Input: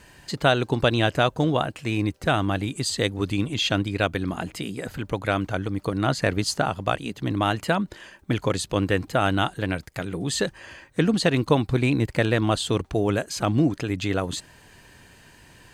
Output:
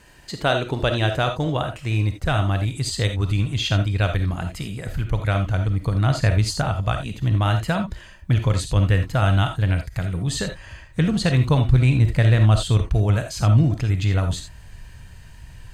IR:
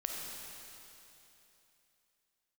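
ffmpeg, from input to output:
-filter_complex "[1:a]atrim=start_sample=2205,atrim=end_sample=3969[link_01];[0:a][link_01]afir=irnorm=-1:irlink=0,asubboost=boost=11:cutoff=94"

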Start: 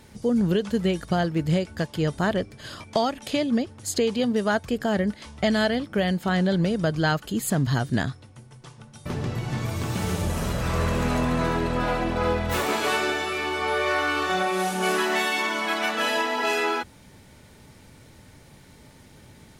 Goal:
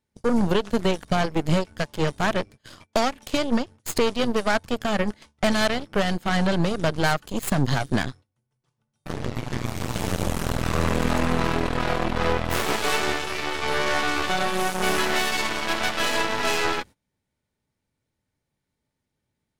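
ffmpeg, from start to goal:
ffmpeg -i in.wav -af "agate=range=-22dB:threshold=-39dB:ratio=16:detection=peak,aeval=exprs='0.266*(cos(1*acos(clip(val(0)/0.266,-1,1)))-cos(1*PI/2))+0.0531*(cos(6*acos(clip(val(0)/0.266,-1,1)))-cos(6*PI/2))+0.0237*(cos(7*acos(clip(val(0)/0.266,-1,1)))-cos(7*PI/2))':channel_layout=same" out.wav

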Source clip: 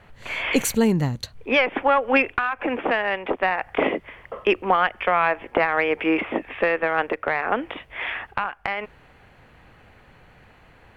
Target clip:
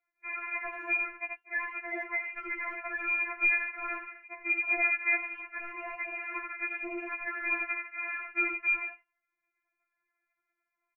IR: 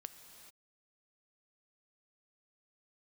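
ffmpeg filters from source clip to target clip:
-filter_complex "[0:a]lowshelf=frequency=270:gain=-11.5,agate=range=-27dB:threshold=-42dB:ratio=16:detection=peak,tiltshelf=frequency=1400:gain=-8.5,aecho=1:1:83:0.422,acrossover=split=300[link_01][link_02];[link_02]aeval=exprs='abs(val(0))':channel_layout=same[link_03];[link_01][link_03]amix=inputs=2:normalize=0,lowpass=frequency=2200:width_type=q:width=0.5098,lowpass=frequency=2200:width_type=q:width=0.6013,lowpass=frequency=2200:width_type=q:width=0.9,lowpass=frequency=2200:width_type=q:width=2.563,afreqshift=-2600,areverse,acompressor=threshold=-31dB:ratio=6,areverse,afftfilt=real='re*4*eq(mod(b,16),0)':imag='im*4*eq(mod(b,16),0)':win_size=2048:overlap=0.75,volume=6.5dB"

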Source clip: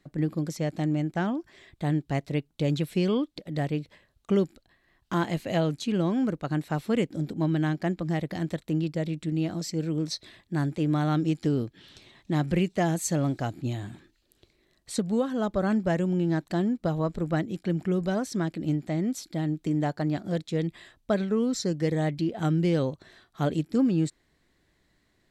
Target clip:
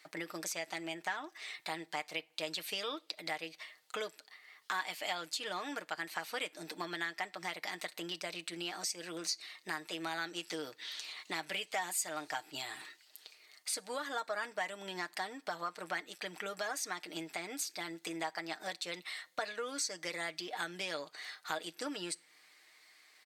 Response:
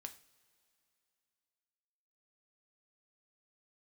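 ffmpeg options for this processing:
-filter_complex "[0:a]highpass=1100,aecho=1:1:7.1:0.54,acompressor=threshold=-50dB:ratio=2.5,asplit=2[link_01][link_02];[1:a]atrim=start_sample=2205[link_03];[link_02][link_03]afir=irnorm=-1:irlink=0,volume=-6dB[link_04];[link_01][link_04]amix=inputs=2:normalize=0,asetrate=48000,aresample=44100,volume=8dB"

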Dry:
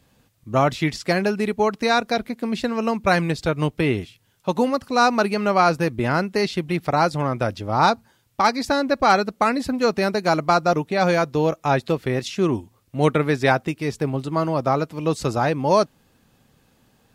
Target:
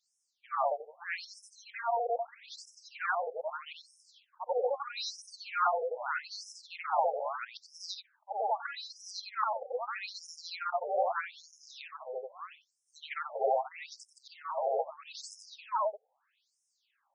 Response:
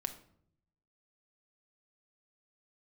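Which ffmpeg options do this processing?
-af "afftfilt=real='re':imag='-im':win_size=8192:overlap=0.75,afftfilt=real='re*between(b*sr/1024,570*pow(7300/570,0.5+0.5*sin(2*PI*0.79*pts/sr))/1.41,570*pow(7300/570,0.5+0.5*sin(2*PI*0.79*pts/sr))*1.41)':imag='im*between(b*sr/1024,570*pow(7300/570,0.5+0.5*sin(2*PI*0.79*pts/sr))/1.41,570*pow(7300/570,0.5+0.5*sin(2*PI*0.79*pts/sr))*1.41)':win_size=1024:overlap=0.75,volume=-2dB"

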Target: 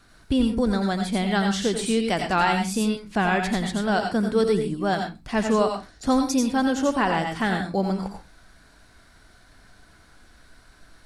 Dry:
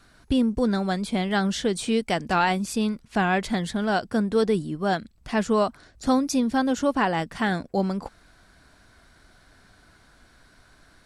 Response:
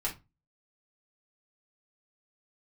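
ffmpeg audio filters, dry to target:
-filter_complex "[0:a]asplit=2[link_01][link_02];[1:a]atrim=start_sample=2205,highshelf=frequency=3900:gain=9.5,adelay=85[link_03];[link_02][link_03]afir=irnorm=-1:irlink=0,volume=-10dB[link_04];[link_01][link_04]amix=inputs=2:normalize=0"

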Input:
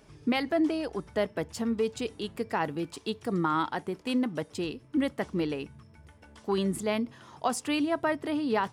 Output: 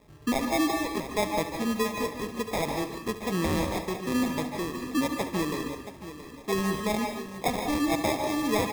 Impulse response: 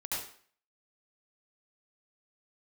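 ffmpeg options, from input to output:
-filter_complex "[0:a]aecho=1:1:675|1350|2025:0.224|0.0739|0.0244,acrusher=samples=30:mix=1:aa=0.000001,asplit=2[link_01][link_02];[1:a]atrim=start_sample=2205,adelay=71[link_03];[link_02][link_03]afir=irnorm=-1:irlink=0,volume=-7.5dB[link_04];[link_01][link_04]amix=inputs=2:normalize=0"

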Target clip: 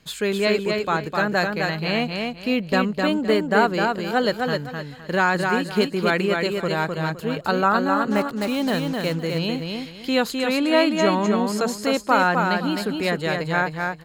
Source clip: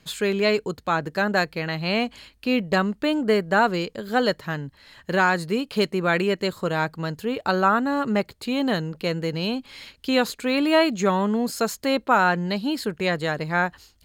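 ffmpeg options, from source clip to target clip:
ffmpeg -i in.wav -filter_complex "[0:a]asplit=3[link_01][link_02][link_03];[link_01]afade=type=out:start_time=8.1:duration=0.02[link_04];[link_02]acrusher=bits=5:mix=0:aa=0.5,afade=type=in:start_time=8.1:duration=0.02,afade=type=out:start_time=9.14:duration=0.02[link_05];[link_03]afade=type=in:start_time=9.14:duration=0.02[link_06];[link_04][link_05][link_06]amix=inputs=3:normalize=0,asettb=1/sr,asplit=3[link_07][link_08][link_09];[link_07]atrim=end=10.314[link_10];[link_08]atrim=start=10.31:end=11.76,asetpts=PTS-STARTPTS,afade=type=in:duration=0.004:curve=qsin,afade=type=out:start_time=1.446:duration=0.004:curve=qsin,lowpass=11000[link_11];[link_09]atrim=start=11.756[link_12];[link_10][link_11]acrossfade=duration=0.004:curve1=hsin:curve2=qsin[link_13];[link_13][link_12]acrossfade=duration=0.004:curve1=qsin:curve2=hsin,aecho=1:1:257|514|771|1028:0.631|0.164|0.0427|0.0111" out.wav

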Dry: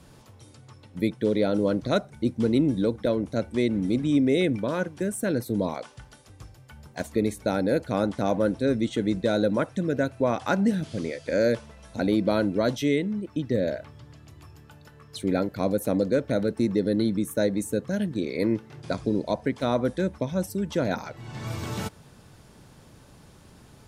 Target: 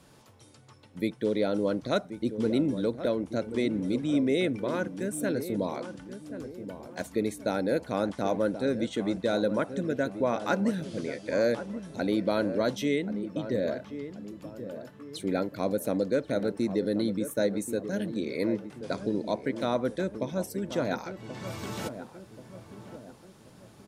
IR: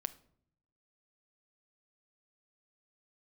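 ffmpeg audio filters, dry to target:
-filter_complex "[0:a]lowshelf=frequency=120:gain=-11,asplit=2[link_01][link_02];[link_02]adelay=1082,lowpass=frequency=990:poles=1,volume=-10dB,asplit=2[link_03][link_04];[link_04]adelay=1082,lowpass=frequency=990:poles=1,volume=0.47,asplit=2[link_05][link_06];[link_06]adelay=1082,lowpass=frequency=990:poles=1,volume=0.47,asplit=2[link_07][link_08];[link_08]adelay=1082,lowpass=frequency=990:poles=1,volume=0.47,asplit=2[link_09][link_10];[link_10]adelay=1082,lowpass=frequency=990:poles=1,volume=0.47[link_11];[link_01][link_03][link_05][link_07][link_09][link_11]amix=inputs=6:normalize=0,volume=-2.5dB"

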